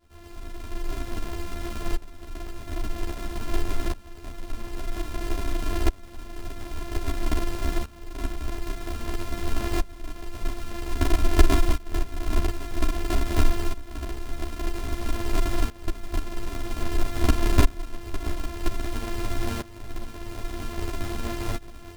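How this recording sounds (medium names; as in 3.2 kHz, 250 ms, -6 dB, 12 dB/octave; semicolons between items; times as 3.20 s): a buzz of ramps at a fixed pitch in blocks of 128 samples; tremolo saw up 0.51 Hz, depth 90%; a shimmering, thickened sound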